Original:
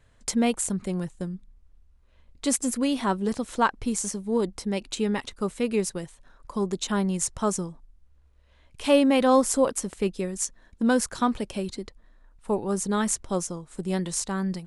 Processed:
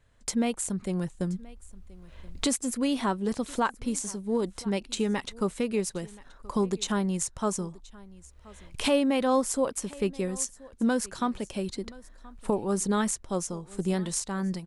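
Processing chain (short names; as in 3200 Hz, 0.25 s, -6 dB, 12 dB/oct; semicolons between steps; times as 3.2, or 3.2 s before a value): recorder AGC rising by 10 dB/s; on a send: echo 1.027 s -22 dB; on the sum: gain -5 dB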